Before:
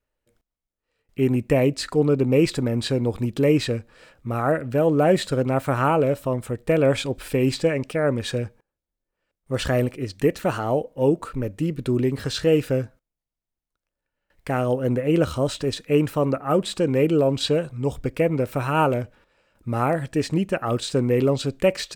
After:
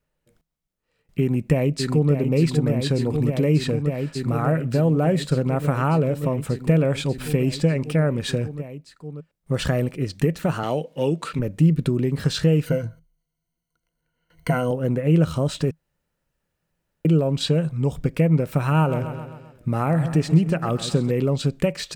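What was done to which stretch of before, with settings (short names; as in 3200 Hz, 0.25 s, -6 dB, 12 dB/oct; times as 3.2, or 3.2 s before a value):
1.2–2.12 echo throw 0.59 s, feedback 85%, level -7.5 dB
10.63–11.39 weighting filter D
12.66–14.71 ripple EQ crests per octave 1.9, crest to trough 16 dB
15.71–17.05 room tone
18.58–21.11 feedback echo 0.131 s, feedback 51%, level -14 dB
whole clip: compressor 2.5:1, threshold -26 dBFS; bell 160 Hz +13.5 dB 0.4 oct; gain +3 dB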